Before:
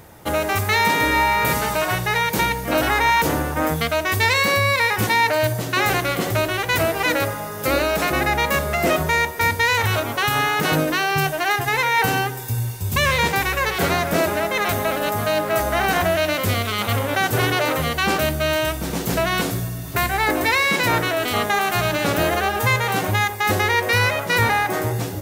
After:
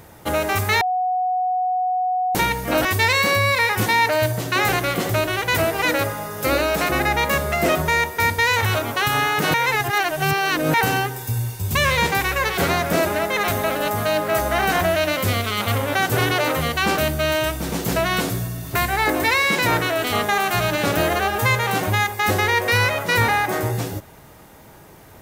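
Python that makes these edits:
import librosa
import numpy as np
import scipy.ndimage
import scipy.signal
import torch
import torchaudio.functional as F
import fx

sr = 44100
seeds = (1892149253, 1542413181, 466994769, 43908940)

y = fx.edit(x, sr, fx.bleep(start_s=0.81, length_s=1.54, hz=736.0, db=-18.0),
    fx.cut(start_s=2.85, length_s=1.21),
    fx.reverse_span(start_s=10.75, length_s=1.2), tone=tone)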